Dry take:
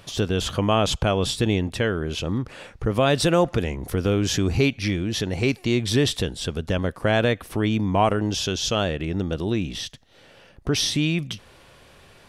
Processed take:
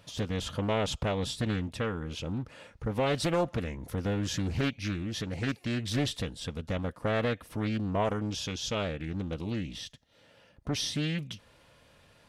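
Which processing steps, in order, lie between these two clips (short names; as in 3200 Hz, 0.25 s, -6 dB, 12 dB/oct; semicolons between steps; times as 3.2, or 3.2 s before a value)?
notch comb 380 Hz; Doppler distortion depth 0.53 ms; gain -8 dB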